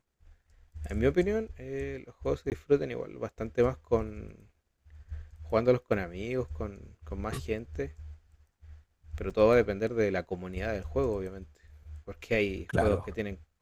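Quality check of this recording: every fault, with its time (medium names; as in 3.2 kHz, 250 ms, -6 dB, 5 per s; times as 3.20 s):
2.50–2.52 s: dropout 18 ms
9.30 s: dropout 4.3 ms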